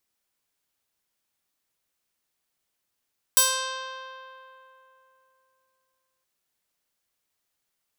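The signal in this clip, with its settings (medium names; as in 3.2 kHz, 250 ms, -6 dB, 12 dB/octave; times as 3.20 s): plucked string C5, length 2.87 s, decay 3.20 s, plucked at 0.24, bright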